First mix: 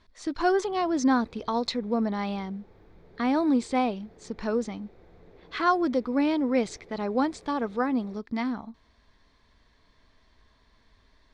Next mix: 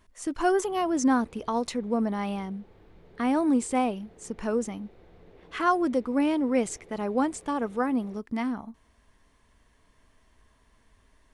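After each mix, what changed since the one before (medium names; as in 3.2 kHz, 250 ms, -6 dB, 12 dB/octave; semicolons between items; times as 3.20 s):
speech: remove resonant low-pass 4.2 kHz, resonance Q 2.9; master: add peaking EQ 2.9 kHz +8 dB 0.25 oct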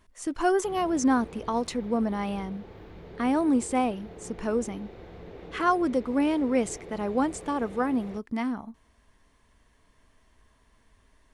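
background +10.0 dB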